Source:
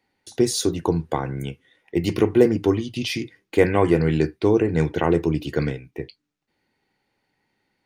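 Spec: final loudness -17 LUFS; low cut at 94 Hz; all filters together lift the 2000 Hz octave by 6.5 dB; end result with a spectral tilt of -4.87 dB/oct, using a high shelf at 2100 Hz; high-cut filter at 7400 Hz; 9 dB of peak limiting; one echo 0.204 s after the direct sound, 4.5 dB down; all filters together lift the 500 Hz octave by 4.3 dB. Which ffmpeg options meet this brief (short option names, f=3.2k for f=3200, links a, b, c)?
-af "highpass=94,lowpass=7.4k,equalizer=f=500:t=o:g=5,equalizer=f=2k:t=o:g=5,highshelf=f=2.1k:g=4.5,alimiter=limit=-7.5dB:level=0:latency=1,aecho=1:1:204:0.596,volume=3dB"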